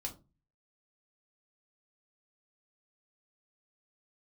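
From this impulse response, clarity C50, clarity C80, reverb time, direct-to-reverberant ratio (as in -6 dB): 14.0 dB, 20.5 dB, 0.30 s, 1.0 dB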